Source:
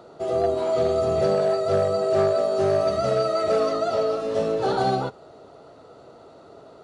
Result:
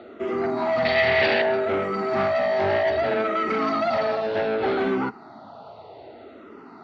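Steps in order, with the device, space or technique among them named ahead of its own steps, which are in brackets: barber-pole phaser into a guitar amplifier (barber-pole phaser -0.64 Hz; saturation -25.5 dBFS, distortion -10 dB; cabinet simulation 90–4200 Hz, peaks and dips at 150 Hz -8 dB, 230 Hz +7 dB, 500 Hz -8 dB, 850 Hz +5 dB, 2.1 kHz +6 dB); 0.85–1.42 s: high-order bell 3.1 kHz +12 dB; trim +7.5 dB

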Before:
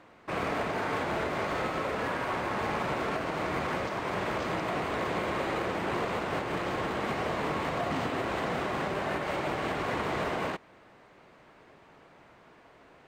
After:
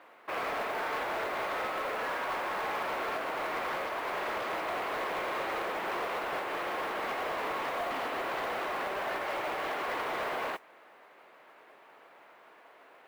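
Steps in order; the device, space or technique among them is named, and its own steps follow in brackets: carbon microphone (band-pass 500–3600 Hz; saturation -30 dBFS, distortion -15 dB; modulation noise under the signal 23 dB); trim +2 dB

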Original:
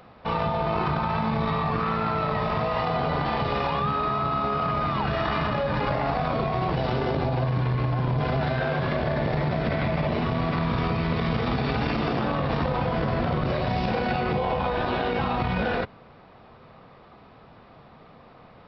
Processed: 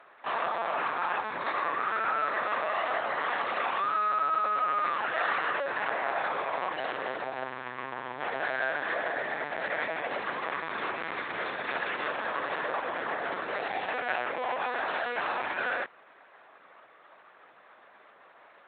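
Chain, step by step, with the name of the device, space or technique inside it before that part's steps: talking toy (LPC vocoder at 8 kHz pitch kept; high-pass 530 Hz 12 dB/octave; peaking EQ 1.7 kHz +9.5 dB 0.58 oct); trim -4 dB

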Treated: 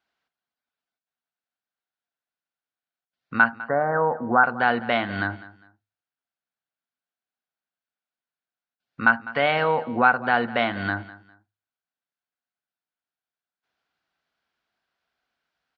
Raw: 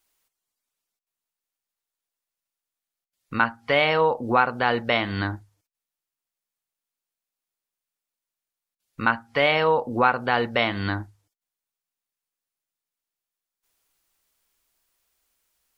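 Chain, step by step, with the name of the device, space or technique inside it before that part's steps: 3.58–4.44 s: steep low-pass 1.8 kHz 96 dB/octave; guitar cabinet (cabinet simulation 79–4400 Hz, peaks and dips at 160 Hz +4 dB, 240 Hz +6 dB, 720 Hz +8 dB, 1.5 kHz +10 dB); feedback delay 202 ms, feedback 27%, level -18 dB; trim -4 dB

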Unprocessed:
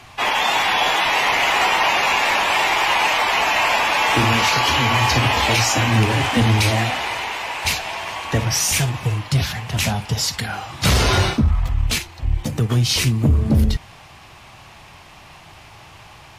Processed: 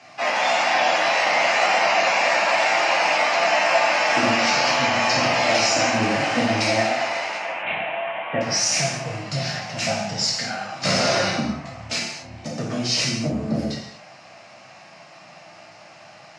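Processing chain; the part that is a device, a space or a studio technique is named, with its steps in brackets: television speaker (cabinet simulation 160–7100 Hz, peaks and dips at 390 Hz -8 dB, 630 Hz +9 dB, 1 kHz -5 dB, 3.4 kHz -9 dB, 5.2 kHz +5 dB); 7.37–8.41 s: steep low-pass 3.4 kHz 96 dB/octave; gated-style reverb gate 280 ms falling, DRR -3.5 dB; trim -6 dB

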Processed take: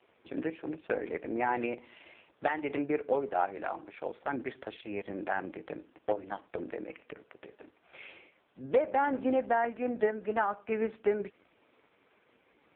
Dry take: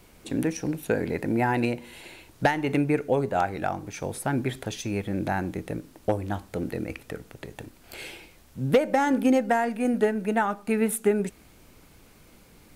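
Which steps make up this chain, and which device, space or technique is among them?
telephone (band-pass 370–3400 Hz; saturation -11 dBFS, distortion -24 dB; trim -2.5 dB; AMR-NB 4.75 kbps 8 kHz)

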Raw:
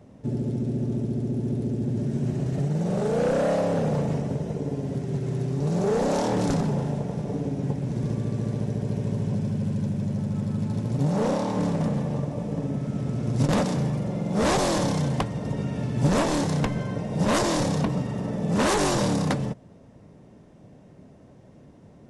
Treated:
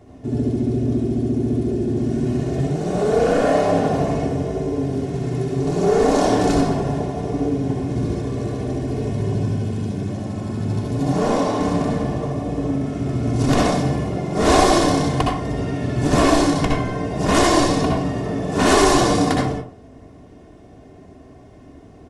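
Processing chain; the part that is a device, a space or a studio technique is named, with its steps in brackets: microphone above a desk (comb 2.8 ms, depth 62%; reverberation RT60 0.40 s, pre-delay 60 ms, DRR -1.5 dB); trim +3 dB

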